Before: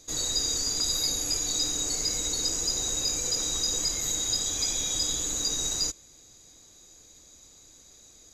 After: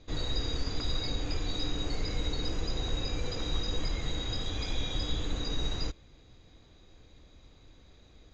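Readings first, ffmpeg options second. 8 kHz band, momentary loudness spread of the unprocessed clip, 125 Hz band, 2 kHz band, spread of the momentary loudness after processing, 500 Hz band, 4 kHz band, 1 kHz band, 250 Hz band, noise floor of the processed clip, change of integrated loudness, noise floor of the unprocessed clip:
−24.0 dB, 1 LU, +8.0 dB, 0.0 dB, 1 LU, +1.0 dB, −7.5 dB, +0.5 dB, +2.5 dB, −58 dBFS, −9.0 dB, −54 dBFS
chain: -af "lowpass=frequency=3500:width=0.5412,lowpass=frequency=3500:width=1.3066,lowshelf=frequency=150:gain=11"

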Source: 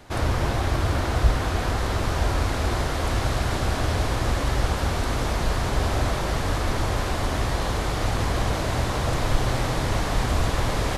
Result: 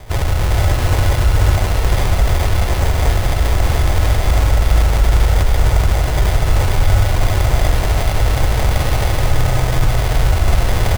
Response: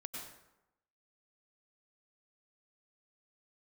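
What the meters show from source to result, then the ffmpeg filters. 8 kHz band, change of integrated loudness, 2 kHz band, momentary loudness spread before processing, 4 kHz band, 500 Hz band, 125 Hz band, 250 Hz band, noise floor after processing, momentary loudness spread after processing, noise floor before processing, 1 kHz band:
+6.5 dB, +8.5 dB, +5.5 dB, 2 LU, +5.5 dB, +5.0 dB, +10.0 dB, +2.5 dB, −18 dBFS, 2 LU, −27 dBFS, +4.0 dB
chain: -filter_complex "[0:a]lowshelf=frequency=130:gain=9.5,asplit=2[link_01][link_02];[link_02]aecho=0:1:72:0.631[link_03];[link_01][link_03]amix=inputs=2:normalize=0,alimiter=limit=-17.5dB:level=0:latency=1:release=32,lowpass=2600,asplit=2[link_04][link_05];[1:a]atrim=start_sample=2205,asetrate=48510,aresample=44100[link_06];[link_05][link_06]afir=irnorm=-1:irlink=0,volume=1.5dB[link_07];[link_04][link_07]amix=inputs=2:normalize=0,acrusher=samples=32:mix=1:aa=0.000001,equalizer=frequency=250:width=1.1:gain=-10.5,aecho=1:1:428:0.708,volume=6dB"

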